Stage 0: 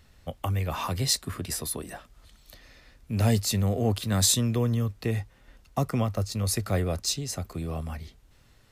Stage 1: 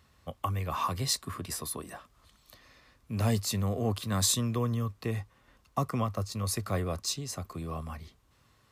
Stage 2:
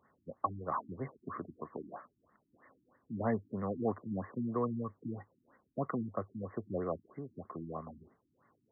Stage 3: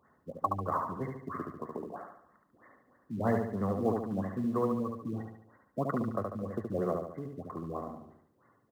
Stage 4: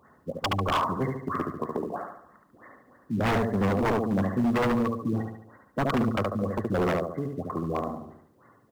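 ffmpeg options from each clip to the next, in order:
ffmpeg -i in.wav -af "highpass=64,equalizer=frequency=1100:width=5.5:gain=11,volume=-4.5dB" out.wav
ffmpeg -i in.wav -af "highpass=230,afftfilt=real='re*lt(b*sr/1024,330*pow(2200/330,0.5+0.5*sin(2*PI*3.1*pts/sr)))':imag='im*lt(b*sr/1024,330*pow(2200/330,0.5+0.5*sin(2*PI*3.1*pts/sr)))':win_size=1024:overlap=0.75" out.wav
ffmpeg -i in.wav -filter_complex "[0:a]asplit=2[link_01][link_02];[link_02]acrusher=bits=5:mode=log:mix=0:aa=0.000001,volume=-8.5dB[link_03];[link_01][link_03]amix=inputs=2:normalize=0,aecho=1:1:72|144|216|288|360|432:0.631|0.297|0.139|0.0655|0.0308|0.0145" out.wav
ffmpeg -i in.wav -af "aeval=exprs='0.0398*(abs(mod(val(0)/0.0398+3,4)-2)-1)':channel_layout=same,volume=9dB" out.wav

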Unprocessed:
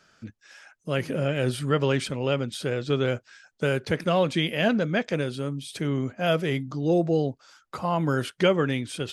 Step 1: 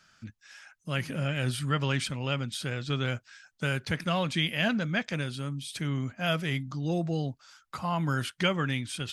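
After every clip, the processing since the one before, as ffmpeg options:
ffmpeg -i in.wav -af "equalizer=frequency=440:width_type=o:width=1.4:gain=-12.5" out.wav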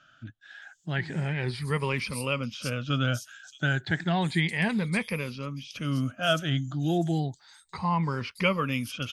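ffmpeg -i in.wav -filter_complex "[0:a]afftfilt=real='re*pow(10,13/40*sin(2*PI*(0.86*log(max(b,1)*sr/1024/100)/log(2)-(0.32)*(pts-256)/sr)))':imag='im*pow(10,13/40*sin(2*PI*(0.86*log(max(b,1)*sr/1024/100)/log(2)-(0.32)*(pts-256)/sr)))':win_size=1024:overlap=0.75,acrossover=split=5000[link_01][link_02];[link_02]adelay=620[link_03];[link_01][link_03]amix=inputs=2:normalize=0" out.wav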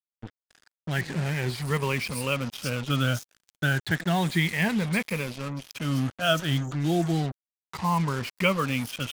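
ffmpeg -i in.wav -af "acrusher=bits=5:mix=0:aa=0.5,volume=1.5dB" out.wav

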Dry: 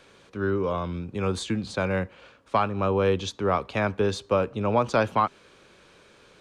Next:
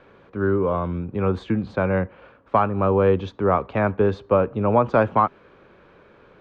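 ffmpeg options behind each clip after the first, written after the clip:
ffmpeg -i in.wav -af "lowpass=1600,volume=5dB" out.wav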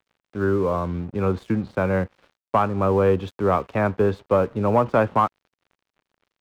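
ffmpeg -i in.wav -af "acontrast=36,aeval=exprs='sgn(val(0))*max(abs(val(0))-0.0112,0)':channel_layout=same,volume=-5dB" out.wav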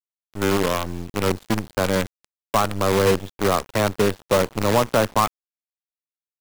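ffmpeg -i in.wav -af "acrusher=bits=4:dc=4:mix=0:aa=0.000001,areverse,acompressor=mode=upward:threshold=-27dB:ratio=2.5,areverse" out.wav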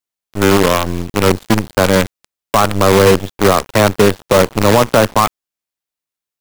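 ffmpeg -i in.wav -filter_complex "[0:a]asplit=2[link_01][link_02];[link_02]aeval=exprs='val(0)*gte(abs(val(0)),0.0841)':channel_layout=same,volume=-11dB[link_03];[link_01][link_03]amix=inputs=2:normalize=0,alimiter=level_in=10dB:limit=-1dB:release=50:level=0:latency=1,volume=-1dB" out.wav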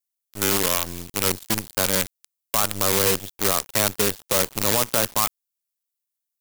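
ffmpeg -i in.wav -af "crystalizer=i=5.5:c=0,volume=-15.5dB" out.wav

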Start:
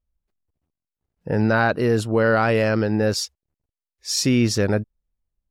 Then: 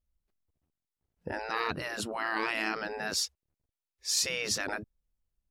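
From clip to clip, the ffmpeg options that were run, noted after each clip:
ffmpeg -i in.wav -af "afftfilt=real='re*lt(hypot(re,im),0.251)':imag='im*lt(hypot(re,im),0.251)':win_size=1024:overlap=0.75,volume=-3dB" out.wav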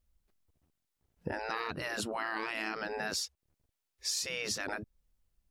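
ffmpeg -i in.wav -af "acompressor=threshold=-39dB:ratio=6,volume=6dB" out.wav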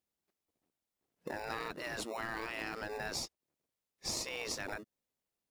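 ffmpeg -i in.wav -filter_complex "[0:a]highpass=300,asplit=2[link_01][link_02];[link_02]acrusher=samples=28:mix=1:aa=0.000001,volume=-7dB[link_03];[link_01][link_03]amix=inputs=2:normalize=0,volume=-4.5dB" out.wav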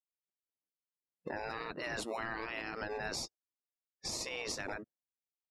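ffmpeg -i in.wav -af "afftdn=noise_reduction=26:noise_floor=-55,alimiter=level_in=8.5dB:limit=-24dB:level=0:latency=1:release=114,volume=-8.5dB,volume=4dB" out.wav

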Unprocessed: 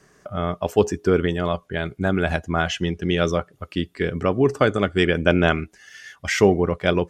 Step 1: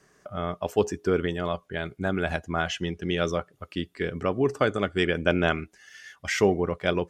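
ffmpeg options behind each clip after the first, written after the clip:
ffmpeg -i in.wav -af "lowshelf=frequency=240:gain=-3.5,volume=-4.5dB" out.wav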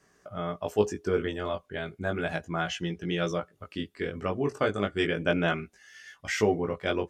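ffmpeg -i in.wav -af "flanger=delay=17.5:depth=2.7:speed=0.34" out.wav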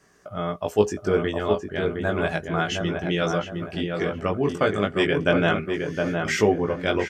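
ffmpeg -i in.wav -filter_complex "[0:a]asplit=2[link_01][link_02];[link_02]adelay=713,lowpass=frequency=1700:poles=1,volume=-4dB,asplit=2[link_03][link_04];[link_04]adelay=713,lowpass=frequency=1700:poles=1,volume=0.39,asplit=2[link_05][link_06];[link_06]adelay=713,lowpass=frequency=1700:poles=1,volume=0.39,asplit=2[link_07][link_08];[link_08]adelay=713,lowpass=frequency=1700:poles=1,volume=0.39,asplit=2[link_09][link_10];[link_10]adelay=713,lowpass=frequency=1700:poles=1,volume=0.39[link_11];[link_01][link_03][link_05][link_07][link_09][link_11]amix=inputs=6:normalize=0,volume=5dB" out.wav

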